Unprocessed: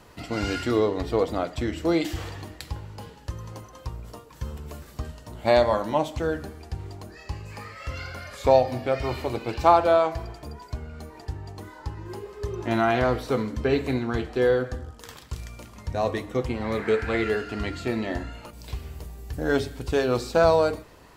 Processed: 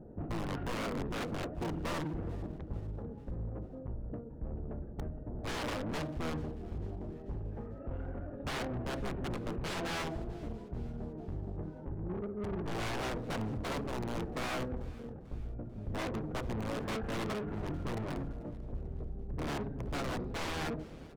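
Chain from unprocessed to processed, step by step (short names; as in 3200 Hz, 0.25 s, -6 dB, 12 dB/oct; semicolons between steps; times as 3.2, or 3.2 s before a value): Wiener smoothing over 41 samples; low-pass opened by the level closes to 900 Hz, open at -18 dBFS; low shelf 150 Hz -9.5 dB; in parallel at -0.5 dB: compressor 8:1, threshold -31 dBFS, peak gain reduction 18.5 dB; on the sum: wrapped overs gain 20.5 dB; tape spacing loss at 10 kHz 25 dB; soft clip -38.5 dBFS, distortion -5 dB; on a send: feedback echo 0.442 s, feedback 51%, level -21.5 dB; on the sum: harmoniser -12 st 0 dB; Doppler distortion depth 0.18 ms; gain +1 dB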